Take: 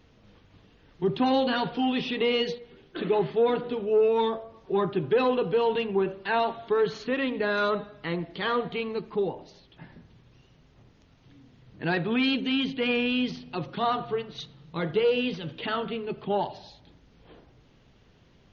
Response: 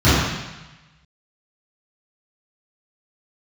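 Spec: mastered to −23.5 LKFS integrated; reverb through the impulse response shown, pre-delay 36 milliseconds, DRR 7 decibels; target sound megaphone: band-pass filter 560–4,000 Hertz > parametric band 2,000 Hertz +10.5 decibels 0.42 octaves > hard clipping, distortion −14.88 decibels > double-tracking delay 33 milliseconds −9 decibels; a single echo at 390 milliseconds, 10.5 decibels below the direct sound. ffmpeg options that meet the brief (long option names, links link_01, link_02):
-filter_complex "[0:a]aecho=1:1:390:0.299,asplit=2[link_01][link_02];[1:a]atrim=start_sample=2205,adelay=36[link_03];[link_02][link_03]afir=irnorm=-1:irlink=0,volume=-32.5dB[link_04];[link_01][link_04]amix=inputs=2:normalize=0,highpass=560,lowpass=4000,equalizer=frequency=2000:width_type=o:width=0.42:gain=10.5,asoftclip=type=hard:threshold=-23dB,asplit=2[link_05][link_06];[link_06]adelay=33,volume=-9dB[link_07];[link_05][link_07]amix=inputs=2:normalize=0,volume=5.5dB"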